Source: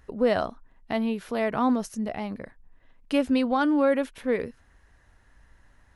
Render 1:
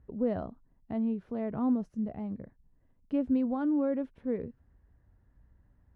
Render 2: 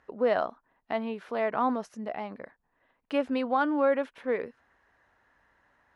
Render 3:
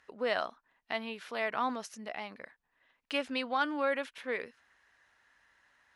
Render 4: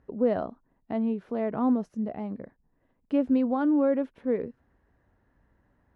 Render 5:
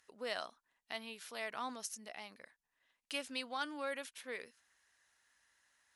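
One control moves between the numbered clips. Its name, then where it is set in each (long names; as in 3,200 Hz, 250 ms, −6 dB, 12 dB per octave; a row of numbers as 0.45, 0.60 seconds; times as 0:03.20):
resonant band-pass, frequency: 110, 960, 2,600, 270, 7,700 Hertz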